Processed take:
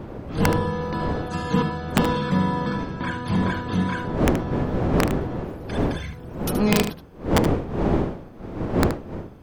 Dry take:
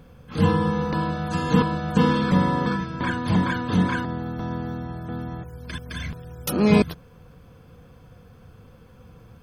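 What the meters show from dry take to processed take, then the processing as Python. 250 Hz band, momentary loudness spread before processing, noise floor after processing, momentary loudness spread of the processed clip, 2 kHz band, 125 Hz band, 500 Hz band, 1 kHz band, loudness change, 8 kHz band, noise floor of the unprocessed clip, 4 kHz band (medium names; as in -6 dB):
0.0 dB, 14 LU, -41 dBFS, 11 LU, +0.5 dB, +0.5 dB, +2.5 dB, +0.5 dB, -0.5 dB, +5.0 dB, -50 dBFS, +2.0 dB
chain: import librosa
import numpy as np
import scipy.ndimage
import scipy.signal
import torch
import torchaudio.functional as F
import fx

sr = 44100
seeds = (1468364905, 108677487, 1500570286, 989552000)

y = fx.dmg_wind(x, sr, seeds[0], corner_hz=370.0, level_db=-24.0)
y = (np.mod(10.0 ** (6.5 / 20.0) * y + 1.0, 2.0) - 1.0) / 10.0 ** (6.5 / 20.0)
y = y + 10.0 ** (-9.5 / 20.0) * np.pad(y, (int(75 * sr / 1000.0), 0))[:len(y)]
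y = y * 10.0 ** (-2.5 / 20.0)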